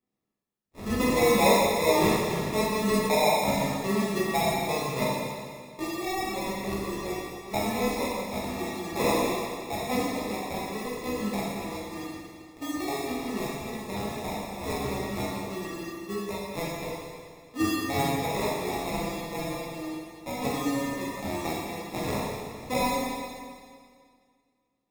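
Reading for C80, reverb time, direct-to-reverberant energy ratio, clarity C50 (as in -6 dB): 0.0 dB, 2.0 s, -7.5 dB, -2.5 dB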